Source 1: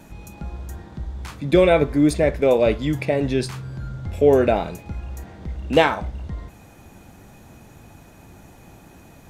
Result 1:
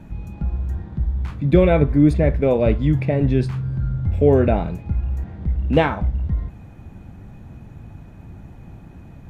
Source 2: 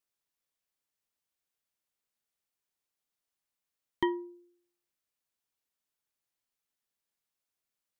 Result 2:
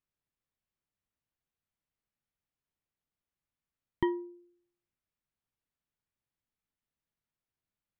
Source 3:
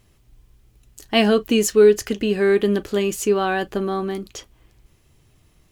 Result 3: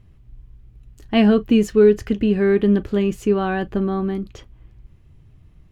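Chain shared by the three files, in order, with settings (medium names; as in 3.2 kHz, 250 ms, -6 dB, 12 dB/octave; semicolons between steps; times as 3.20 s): tone controls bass +12 dB, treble -13 dB; trim -2.5 dB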